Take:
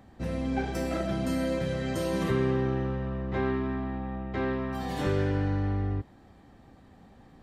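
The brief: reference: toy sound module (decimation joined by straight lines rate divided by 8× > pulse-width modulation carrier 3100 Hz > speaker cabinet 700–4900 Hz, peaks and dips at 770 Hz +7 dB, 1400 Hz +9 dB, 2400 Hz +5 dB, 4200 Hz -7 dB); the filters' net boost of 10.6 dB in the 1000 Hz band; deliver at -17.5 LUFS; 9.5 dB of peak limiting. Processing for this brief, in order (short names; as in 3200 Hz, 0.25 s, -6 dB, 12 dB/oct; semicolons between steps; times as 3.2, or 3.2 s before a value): bell 1000 Hz +8.5 dB; limiter -22 dBFS; decimation joined by straight lines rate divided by 8×; pulse-width modulation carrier 3100 Hz; speaker cabinet 700–4900 Hz, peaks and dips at 770 Hz +7 dB, 1400 Hz +9 dB, 2400 Hz +5 dB, 4200 Hz -7 dB; gain +18 dB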